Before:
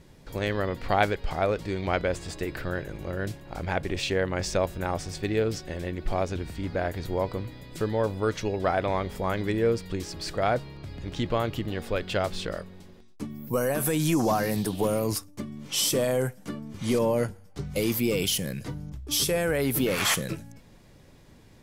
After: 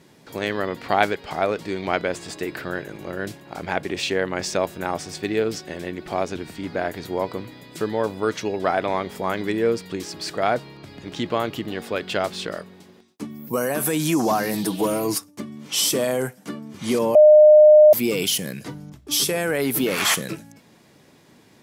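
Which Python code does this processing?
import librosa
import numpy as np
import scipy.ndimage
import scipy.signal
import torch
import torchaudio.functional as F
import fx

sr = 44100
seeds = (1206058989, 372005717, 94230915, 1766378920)

y = fx.comb(x, sr, ms=6.2, depth=0.69, at=(14.53, 15.18))
y = fx.edit(y, sr, fx.bleep(start_s=17.15, length_s=0.78, hz=608.0, db=-10.0), tone=tone)
y = scipy.signal.sosfilt(scipy.signal.butter(2, 190.0, 'highpass', fs=sr, output='sos'), y)
y = fx.peak_eq(y, sr, hz=530.0, db=-4.5, octaves=0.22)
y = y * librosa.db_to_amplitude(4.5)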